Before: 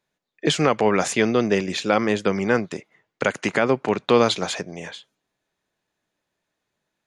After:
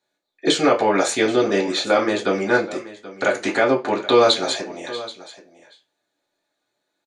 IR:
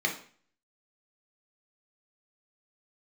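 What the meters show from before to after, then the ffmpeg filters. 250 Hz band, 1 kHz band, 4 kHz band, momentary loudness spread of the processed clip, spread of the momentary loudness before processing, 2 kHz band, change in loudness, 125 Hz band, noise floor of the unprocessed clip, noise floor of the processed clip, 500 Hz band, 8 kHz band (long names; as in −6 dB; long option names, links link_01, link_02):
+0.5 dB, +3.0 dB, +4.5 dB, 14 LU, 13 LU, +2.5 dB, +2.0 dB, −6.0 dB, −80 dBFS, −77 dBFS, +2.5 dB, +2.5 dB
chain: -filter_complex "[0:a]aecho=1:1:780:0.141[link_01];[1:a]atrim=start_sample=2205,asetrate=83790,aresample=44100[link_02];[link_01][link_02]afir=irnorm=-1:irlink=0"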